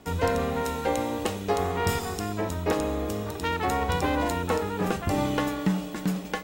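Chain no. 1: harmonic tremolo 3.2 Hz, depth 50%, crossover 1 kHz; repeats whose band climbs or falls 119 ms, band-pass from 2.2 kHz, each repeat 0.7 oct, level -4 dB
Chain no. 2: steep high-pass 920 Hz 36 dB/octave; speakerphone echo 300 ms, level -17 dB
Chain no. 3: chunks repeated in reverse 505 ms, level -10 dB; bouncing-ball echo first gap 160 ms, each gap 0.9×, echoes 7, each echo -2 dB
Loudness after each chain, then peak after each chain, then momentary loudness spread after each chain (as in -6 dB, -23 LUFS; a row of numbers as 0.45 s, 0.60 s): -30.0 LUFS, -34.0 LUFS, -23.5 LUFS; -14.0 dBFS, -14.5 dBFS, -9.0 dBFS; 5 LU, 8 LU, 4 LU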